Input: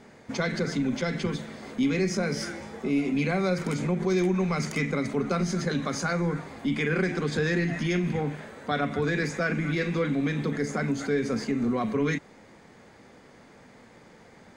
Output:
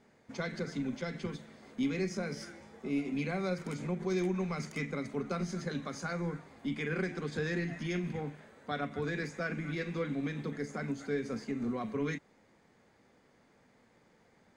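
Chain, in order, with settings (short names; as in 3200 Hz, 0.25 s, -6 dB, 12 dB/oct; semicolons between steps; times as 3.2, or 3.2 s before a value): upward expander 1.5:1, over -35 dBFS; gain -6.5 dB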